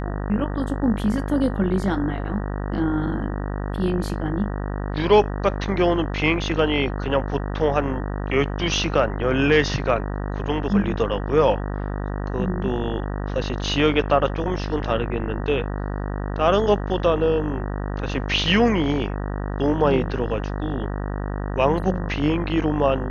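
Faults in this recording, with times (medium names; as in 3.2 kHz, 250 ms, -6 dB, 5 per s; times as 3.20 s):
buzz 50 Hz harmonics 38 -27 dBFS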